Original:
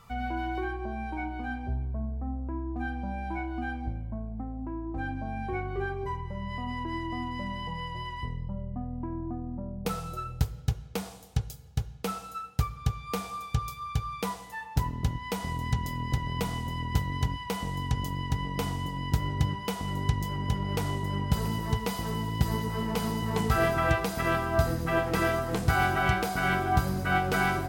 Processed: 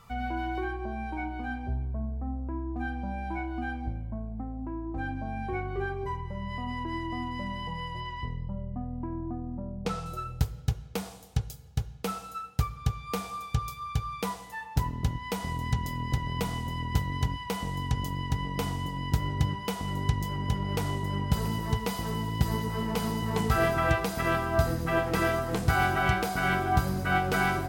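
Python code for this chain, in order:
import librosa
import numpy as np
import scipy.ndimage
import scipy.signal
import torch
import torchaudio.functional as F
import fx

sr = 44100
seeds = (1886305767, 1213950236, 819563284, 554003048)

y = fx.lowpass(x, sr, hz=6900.0, slope=12, at=(8.0, 10.06))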